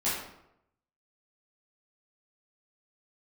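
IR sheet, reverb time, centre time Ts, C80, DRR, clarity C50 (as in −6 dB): 0.80 s, 59 ms, 4.5 dB, −10.5 dB, 1.0 dB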